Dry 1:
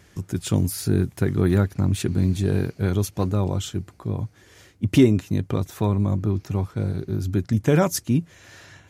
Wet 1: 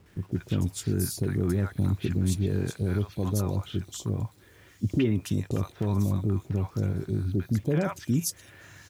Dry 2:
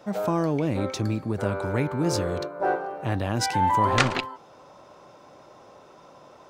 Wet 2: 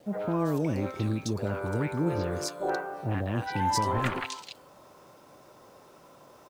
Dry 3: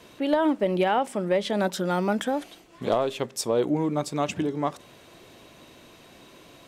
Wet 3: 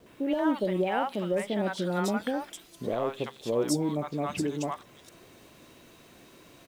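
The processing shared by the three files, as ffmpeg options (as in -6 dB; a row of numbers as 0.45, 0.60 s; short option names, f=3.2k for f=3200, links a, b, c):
-filter_complex "[0:a]alimiter=limit=-13.5dB:level=0:latency=1:release=63,acrossover=split=750|3400[a][b][c];[b]adelay=60[d];[c]adelay=320[e];[a][d][e]amix=inputs=3:normalize=0,acrusher=bits=9:mix=0:aa=0.000001,volume=-2.5dB"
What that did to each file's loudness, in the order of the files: -5.5, -4.5, -4.0 LU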